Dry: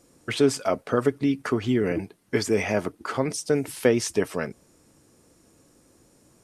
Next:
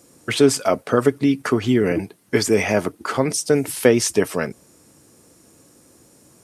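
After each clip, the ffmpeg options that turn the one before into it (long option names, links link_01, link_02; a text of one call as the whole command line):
ffmpeg -i in.wav -af "highpass=72,highshelf=frequency=8200:gain=7,volume=5.5dB" out.wav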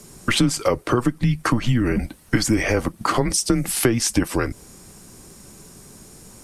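ffmpeg -i in.wav -af "acompressor=threshold=-25dB:ratio=4,afreqshift=-120,volume=8dB" out.wav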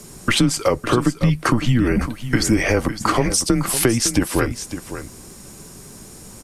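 ffmpeg -i in.wav -filter_complex "[0:a]asplit=2[link_01][link_02];[link_02]alimiter=limit=-13.5dB:level=0:latency=1:release=472,volume=-1dB[link_03];[link_01][link_03]amix=inputs=2:normalize=0,aecho=1:1:557:0.266,volume=-1.5dB" out.wav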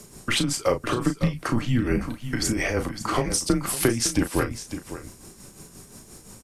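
ffmpeg -i in.wav -filter_complex "[0:a]tremolo=f=5.7:d=0.58,asplit=2[link_01][link_02];[link_02]adelay=35,volume=-8dB[link_03];[link_01][link_03]amix=inputs=2:normalize=0,volume=-4dB" out.wav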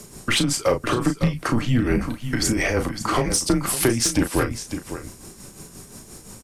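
ffmpeg -i in.wav -af "asoftclip=type=tanh:threshold=-13.5dB,volume=4dB" out.wav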